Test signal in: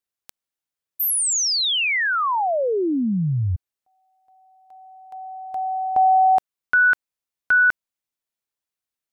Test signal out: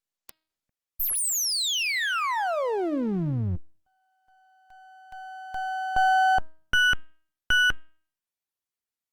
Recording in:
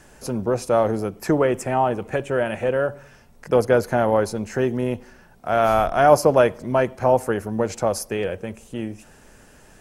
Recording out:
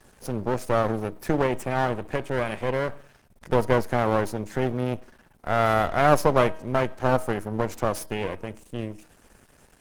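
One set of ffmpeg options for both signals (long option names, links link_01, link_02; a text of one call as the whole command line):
ffmpeg -i in.wav -af "aeval=exprs='max(val(0),0)':channel_layout=same,bandreject=frequency=316.4:width_type=h:width=4,bandreject=frequency=632.8:width_type=h:width=4,bandreject=frequency=949.2:width_type=h:width=4,bandreject=frequency=1265.6:width_type=h:width=4,bandreject=frequency=1582:width_type=h:width=4,bandreject=frequency=1898.4:width_type=h:width=4,bandreject=frequency=2214.8:width_type=h:width=4,bandreject=frequency=2531.2:width_type=h:width=4,bandreject=frequency=2847.6:width_type=h:width=4,bandreject=frequency=3164:width_type=h:width=4,bandreject=frequency=3480.4:width_type=h:width=4,bandreject=frequency=3796.8:width_type=h:width=4,bandreject=frequency=4113.2:width_type=h:width=4,bandreject=frequency=4429.6:width_type=h:width=4,bandreject=frequency=4746:width_type=h:width=4,bandreject=frequency=5062.4:width_type=h:width=4" -ar 48000 -c:a libopus -b:a 24k out.opus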